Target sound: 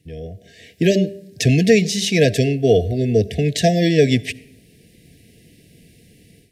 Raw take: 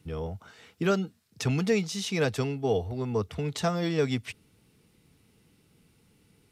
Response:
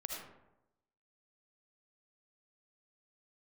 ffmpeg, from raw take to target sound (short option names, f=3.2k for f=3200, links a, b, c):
-filter_complex "[0:a]bandreject=f=197.5:t=h:w=4,bandreject=f=395:t=h:w=4,bandreject=f=592.5:t=h:w=4,bandreject=f=790:t=h:w=4,bandreject=f=987.5:t=h:w=4,bandreject=f=1.185k:t=h:w=4,bandreject=f=1.3825k:t=h:w=4,bandreject=f=1.58k:t=h:w=4,asplit=2[a][b];[1:a]atrim=start_sample=2205[c];[b][c]afir=irnorm=-1:irlink=0,volume=-17.5dB[d];[a][d]amix=inputs=2:normalize=0,afftfilt=real='re*(1-between(b*sr/4096,740,1600))':imag='im*(1-between(b*sr/4096,740,1600))':win_size=4096:overlap=0.75,dynaudnorm=f=430:g=3:m=13dB"